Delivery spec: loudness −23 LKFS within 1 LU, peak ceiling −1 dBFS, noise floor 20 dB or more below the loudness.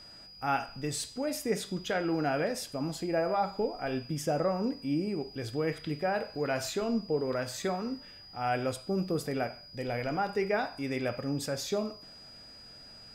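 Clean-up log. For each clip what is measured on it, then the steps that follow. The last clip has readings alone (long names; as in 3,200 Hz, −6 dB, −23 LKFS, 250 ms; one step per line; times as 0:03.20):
interfering tone 4,900 Hz; level of the tone −49 dBFS; integrated loudness −32.5 LKFS; sample peak −17.0 dBFS; target loudness −23.0 LKFS
→ notch filter 4,900 Hz, Q 30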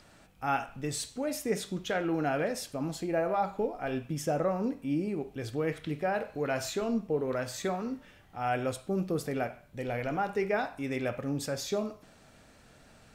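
interfering tone none found; integrated loudness −32.5 LKFS; sample peak −17.0 dBFS; target loudness −23.0 LKFS
→ level +9.5 dB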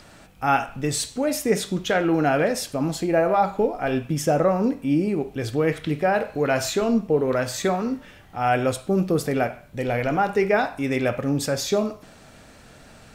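integrated loudness −23.0 LKFS; sample peak −7.5 dBFS; background noise floor −49 dBFS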